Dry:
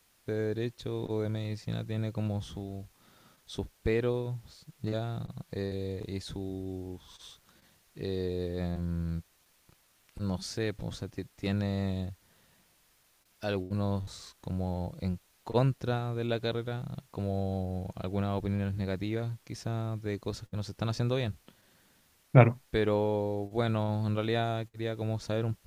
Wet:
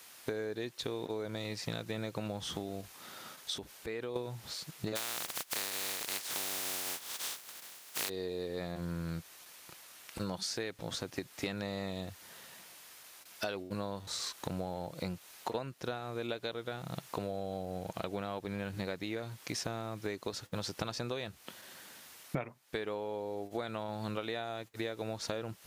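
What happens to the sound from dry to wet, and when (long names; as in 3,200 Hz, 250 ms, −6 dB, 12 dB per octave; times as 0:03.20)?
0:02.81–0:04.16: downward compressor 10 to 1, threshold −42 dBFS
0:04.95–0:08.08: compressing power law on the bin magnitudes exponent 0.23
whole clip: high-pass filter 580 Hz 6 dB per octave; downward compressor 20 to 1, threshold −47 dBFS; level +13.5 dB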